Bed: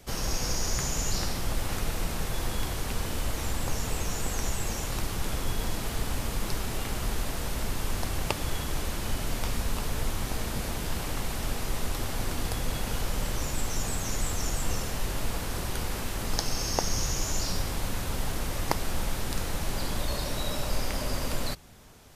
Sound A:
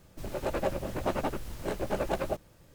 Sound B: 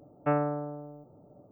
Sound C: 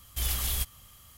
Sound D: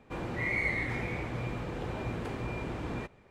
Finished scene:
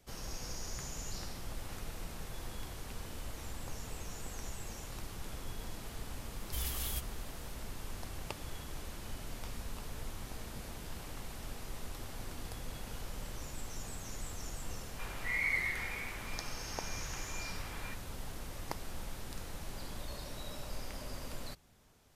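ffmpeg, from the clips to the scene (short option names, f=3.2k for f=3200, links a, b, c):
-filter_complex "[0:a]volume=-13dB[a];[4:a]highpass=1.3k[b];[3:a]atrim=end=1.17,asetpts=PTS-STARTPTS,volume=-8.5dB,afade=t=in:d=0.004:c=hsin,afade=t=out:st=1.166:d=0.004:c=hsin,adelay=6360[c];[b]atrim=end=3.3,asetpts=PTS-STARTPTS,volume=-1dB,afade=t=in:d=0.004:c=hsin,afade=t=out:st=3.296:d=0.004:c=hsin,adelay=14880[d];[a][c][d]amix=inputs=3:normalize=0"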